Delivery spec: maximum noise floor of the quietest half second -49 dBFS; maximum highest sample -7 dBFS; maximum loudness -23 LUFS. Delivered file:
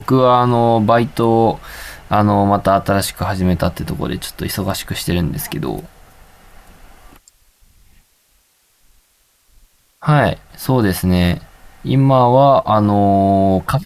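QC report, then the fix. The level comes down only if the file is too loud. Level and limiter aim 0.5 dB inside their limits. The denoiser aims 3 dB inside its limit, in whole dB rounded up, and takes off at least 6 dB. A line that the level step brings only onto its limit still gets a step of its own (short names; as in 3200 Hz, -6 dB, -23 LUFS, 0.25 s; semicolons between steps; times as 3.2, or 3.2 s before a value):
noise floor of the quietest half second -58 dBFS: OK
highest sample -3.0 dBFS: fail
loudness -15.5 LUFS: fail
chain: gain -8 dB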